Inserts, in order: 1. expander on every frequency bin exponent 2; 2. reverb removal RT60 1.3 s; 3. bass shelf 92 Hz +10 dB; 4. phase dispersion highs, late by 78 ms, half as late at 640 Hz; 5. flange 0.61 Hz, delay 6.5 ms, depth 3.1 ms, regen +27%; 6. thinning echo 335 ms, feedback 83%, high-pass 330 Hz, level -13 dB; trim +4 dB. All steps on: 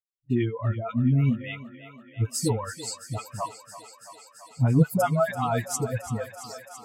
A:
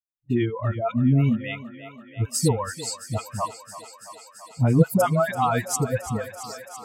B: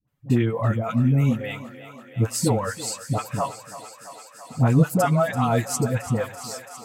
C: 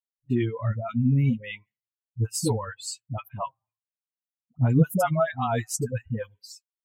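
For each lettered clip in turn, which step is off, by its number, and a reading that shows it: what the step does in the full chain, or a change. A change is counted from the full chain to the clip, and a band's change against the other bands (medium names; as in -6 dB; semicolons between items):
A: 5, 125 Hz band -2.0 dB; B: 1, loudness change +3.5 LU; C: 6, echo-to-direct -9.0 dB to none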